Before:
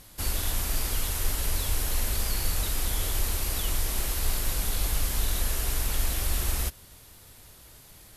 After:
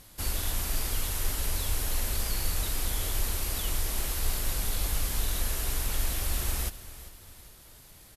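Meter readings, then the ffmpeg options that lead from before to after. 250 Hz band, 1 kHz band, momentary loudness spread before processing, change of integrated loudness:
-2.0 dB, -2.0 dB, 1 LU, -2.0 dB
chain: -af "aecho=1:1:395|790|1185|1580:0.168|0.0672|0.0269|0.0107,volume=0.794"

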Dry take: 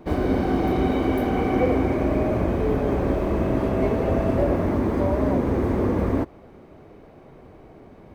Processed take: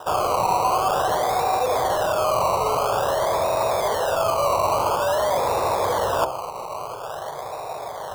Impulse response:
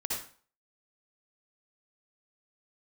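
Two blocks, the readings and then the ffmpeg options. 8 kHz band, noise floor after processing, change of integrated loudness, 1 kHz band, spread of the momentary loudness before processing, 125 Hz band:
no reading, -33 dBFS, +0.5 dB, +10.5 dB, 2 LU, -11.0 dB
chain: -filter_complex "[0:a]lowshelf=f=430:t=q:w=1.5:g=-9.5,asplit=2[s0][s1];[s1]highpass=f=720:p=1,volume=7.08,asoftclip=type=tanh:threshold=0.266[s2];[s0][s2]amix=inputs=2:normalize=0,lowpass=f=1400:p=1,volume=0.501,acrusher=samples=20:mix=1:aa=0.000001:lfo=1:lforange=12:lforate=0.49,bandreject=f=65.19:t=h:w=4,bandreject=f=130.38:t=h:w=4,bandreject=f=195.57:t=h:w=4,bandreject=f=260.76:t=h:w=4,bandreject=f=325.95:t=h:w=4,bandreject=f=391.14:t=h:w=4,bandreject=f=456.33:t=h:w=4,bandreject=f=521.52:t=h:w=4,bandreject=f=586.71:t=h:w=4,bandreject=f=651.9:t=h:w=4,bandreject=f=717.09:t=h:w=4,bandreject=f=782.28:t=h:w=4,bandreject=f=847.47:t=h:w=4,bandreject=f=912.66:t=h:w=4,areverse,acompressor=threshold=0.0282:ratio=6,areverse,equalizer=f=125:t=o:w=1:g=10,equalizer=f=250:t=o:w=1:g=-9,equalizer=f=500:t=o:w=1:g=3,equalizer=f=1000:t=o:w=1:g=11,equalizer=f=2000:t=o:w=1:g=-7,volume=2.11"

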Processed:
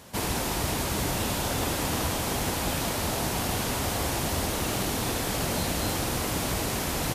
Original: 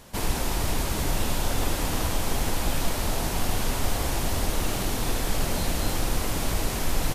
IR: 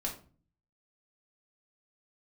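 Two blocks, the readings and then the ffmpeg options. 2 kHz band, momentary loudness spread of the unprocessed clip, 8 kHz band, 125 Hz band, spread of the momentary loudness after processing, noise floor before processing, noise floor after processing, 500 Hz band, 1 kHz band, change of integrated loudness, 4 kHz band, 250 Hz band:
+1.0 dB, 1 LU, +1.0 dB, -1.0 dB, 1 LU, -29 dBFS, -30 dBFS, +1.0 dB, +1.0 dB, 0.0 dB, +1.0 dB, +1.0 dB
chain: -af "highpass=75,volume=1.12"

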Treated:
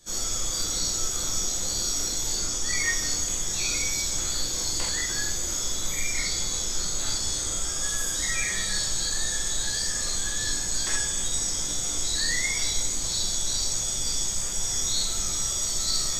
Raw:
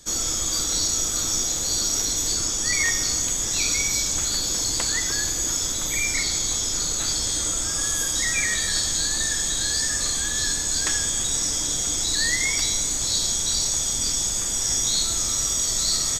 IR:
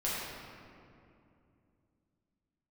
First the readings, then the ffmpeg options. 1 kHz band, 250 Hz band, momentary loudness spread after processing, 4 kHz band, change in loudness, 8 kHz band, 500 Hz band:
-3.0 dB, -4.5 dB, 2 LU, -4.0 dB, -4.5 dB, -4.5 dB, -3.0 dB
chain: -filter_complex "[1:a]atrim=start_sample=2205,atrim=end_sample=3969[s0];[0:a][s0]afir=irnorm=-1:irlink=0,volume=0.447"

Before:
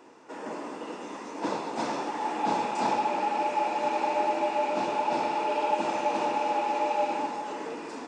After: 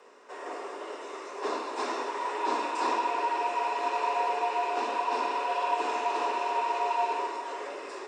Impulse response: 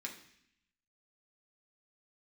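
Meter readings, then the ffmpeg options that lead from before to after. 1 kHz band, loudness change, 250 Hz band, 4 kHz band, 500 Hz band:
-1.0 dB, -1.5 dB, -7.5 dB, 0.0 dB, -3.0 dB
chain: -filter_complex "[0:a]afreqshift=110,asplit=2[s0][s1];[1:a]atrim=start_sample=2205,lowshelf=f=210:g=6[s2];[s1][s2]afir=irnorm=-1:irlink=0,volume=1.19[s3];[s0][s3]amix=inputs=2:normalize=0,volume=0.531"

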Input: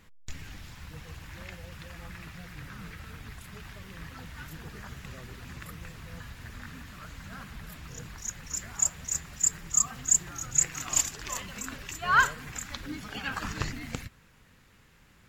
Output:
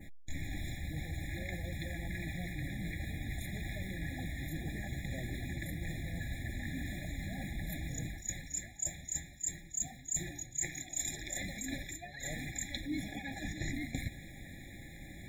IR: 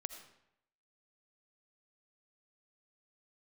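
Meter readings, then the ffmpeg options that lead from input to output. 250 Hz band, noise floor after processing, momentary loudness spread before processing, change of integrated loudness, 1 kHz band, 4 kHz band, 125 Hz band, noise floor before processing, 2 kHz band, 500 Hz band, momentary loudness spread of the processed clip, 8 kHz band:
+2.5 dB, -51 dBFS, 20 LU, -11.5 dB, -18.5 dB, -5.0 dB, +2.0 dB, -59 dBFS, -9.0 dB, -2.0 dB, 5 LU, -10.5 dB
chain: -af "adynamicequalizer=threshold=0.00708:dfrequency=4300:dqfactor=0.76:tfrequency=4300:tqfactor=0.76:attack=5:release=100:ratio=0.375:range=2.5:mode=boostabove:tftype=bell,acontrast=73,superequalizer=6b=1.78:7b=0.355:14b=0.316,areverse,acompressor=threshold=0.01:ratio=6,areverse,afftfilt=real='re*eq(mod(floor(b*sr/1024/830),2),0)':imag='im*eq(mod(floor(b*sr/1024/830),2),0)':win_size=1024:overlap=0.75,volume=1.68"

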